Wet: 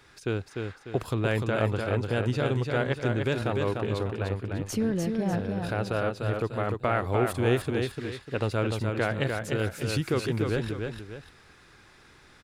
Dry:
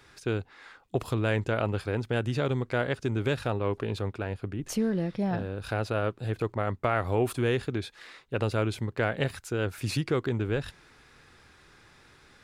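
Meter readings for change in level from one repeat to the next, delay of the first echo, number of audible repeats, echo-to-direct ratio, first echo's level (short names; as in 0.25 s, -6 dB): -8.0 dB, 0.298 s, 2, -4.0 dB, -4.5 dB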